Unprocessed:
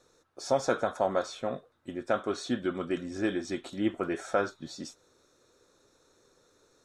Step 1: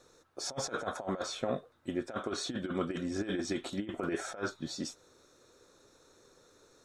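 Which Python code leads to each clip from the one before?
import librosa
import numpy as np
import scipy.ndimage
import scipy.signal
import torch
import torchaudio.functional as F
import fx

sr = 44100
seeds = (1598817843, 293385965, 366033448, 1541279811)

y = fx.over_compress(x, sr, threshold_db=-32.0, ratio=-0.5)
y = y * librosa.db_to_amplitude(-1.0)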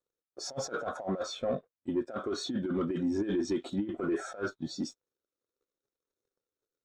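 y = fx.leveller(x, sr, passes=3)
y = fx.spectral_expand(y, sr, expansion=1.5)
y = y * librosa.db_to_amplitude(-3.5)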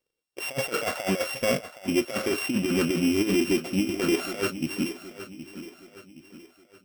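y = np.r_[np.sort(x[:len(x) // 16 * 16].reshape(-1, 16), axis=1).ravel(), x[len(x) // 16 * 16:]]
y = fx.echo_feedback(y, sr, ms=769, feedback_pct=43, wet_db=-13.0)
y = y * librosa.db_to_amplitude(7.0)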